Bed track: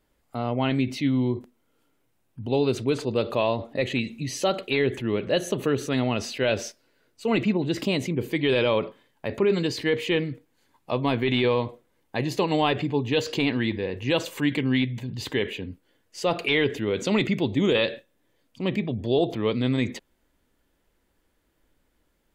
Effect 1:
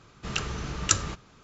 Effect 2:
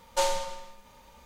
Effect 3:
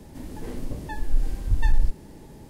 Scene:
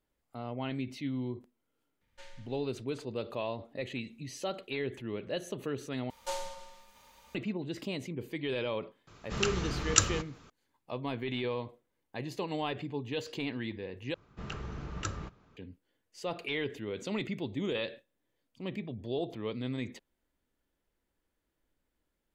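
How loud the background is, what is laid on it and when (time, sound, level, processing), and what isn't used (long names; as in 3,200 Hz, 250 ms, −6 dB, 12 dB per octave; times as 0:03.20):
bed track −12 dB
0:02.01: mix in 2 −16.5 dB + drawn EQ curve 130 Hz 0 dB, 730 Hz −16 dB, 1,100 Hz −16 dB, 1,700 Hz +1 dB, 13,000 Hz −21 dB
0:06.10: overwrite with 2 −10.5 dB + one half of a high-frequency compander encoder only
0:09.07: mix in 1 −1 dB
0:14.14: overwrite with 1 −6 dB + low-pass filter 1,300 Hz 6 dB per octave
not used: 3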